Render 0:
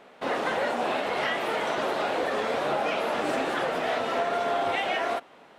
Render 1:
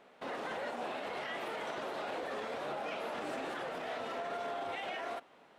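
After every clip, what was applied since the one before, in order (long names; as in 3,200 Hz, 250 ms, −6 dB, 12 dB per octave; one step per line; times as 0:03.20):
brickwall limiter −22.5 dBFS, peak gain reduction 7 dB
level −8.5 dB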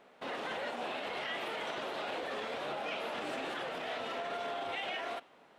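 dynamic equaliser 3,100 Hz, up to +6 dB, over −57 dBFS, Q 1.2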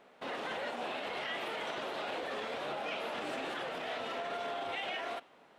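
no processing that can be heard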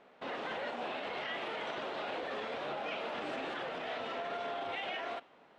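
high-frequency loss of the air 90 metres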